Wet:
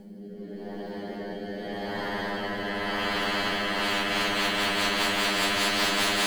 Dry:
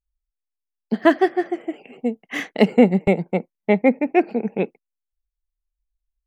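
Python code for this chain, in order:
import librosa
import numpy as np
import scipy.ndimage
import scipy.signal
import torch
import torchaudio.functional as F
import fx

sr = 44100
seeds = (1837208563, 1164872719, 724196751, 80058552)

p1 = fx.backlash(x, sr, play_db=-21.5)
p2 = x + (p1 * 10.0 ** (-11.0 / 20.0))
p3 = fx.robotise(p2, sr, hz=101.0)
p4 = fx.paulstretch(p3, sr, seeds[0], factor=14.0, window_s=1.0, from_s=0.45)
p5 = fx.rotary_switch(p4, sr, hz=0.85, then_hz=5.0, switch_at_s=3.46)
y = fx.spectral_comp(p5, sr, ratio=10.0)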